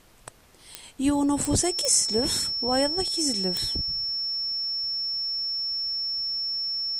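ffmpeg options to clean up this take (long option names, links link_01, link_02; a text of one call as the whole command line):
ffmpeg -i in.wav -af "adeclick=threshold=4,bandreject=frequency=5400:width=30,agate=range=-21dB:threshold=-41dB" out.wav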